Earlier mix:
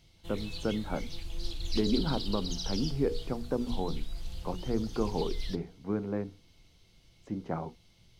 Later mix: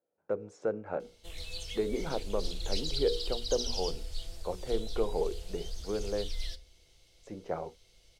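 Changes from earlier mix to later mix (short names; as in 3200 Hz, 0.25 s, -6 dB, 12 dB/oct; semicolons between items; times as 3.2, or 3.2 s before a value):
background: entry +1.00 s; master: add graphic EQ 125/250/500/1000/8000 Hz -9/-11/+8/-5/+6 dB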